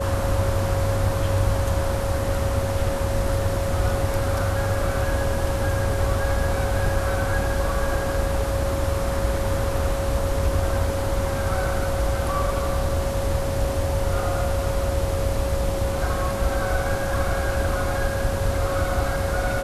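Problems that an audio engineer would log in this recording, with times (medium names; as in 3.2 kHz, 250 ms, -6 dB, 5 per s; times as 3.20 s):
whine 550 Hz -27 dBFS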